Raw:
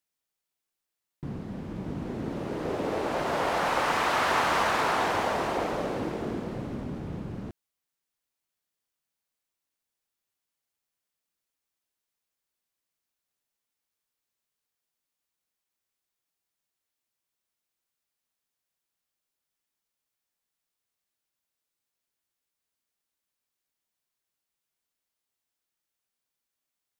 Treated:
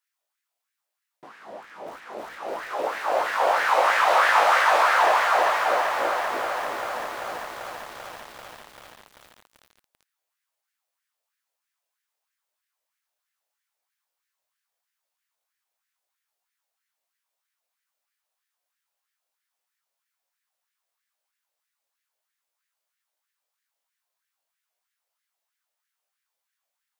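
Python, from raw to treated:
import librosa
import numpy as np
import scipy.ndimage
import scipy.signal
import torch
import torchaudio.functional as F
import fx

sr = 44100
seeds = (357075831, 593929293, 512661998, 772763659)

y = fx.room_early_taps(x, sr, ms=(18, 57), db=(-5.0, -13.5))
y = fx.filter_lfo_highpass(y, sr, shape='sine', hz=3.1, low_hz=570.0, high_hz=1800.0, q=3.3)
y = fx.echo_crushed(y, sr, ms=390, feedback_pct=80, bits=7, wet_db=-7.0)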